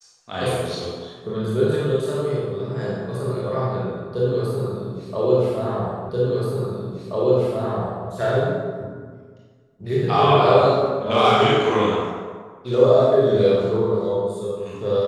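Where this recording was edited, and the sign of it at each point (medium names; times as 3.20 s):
6.09 s: repeat of the last 1.98 s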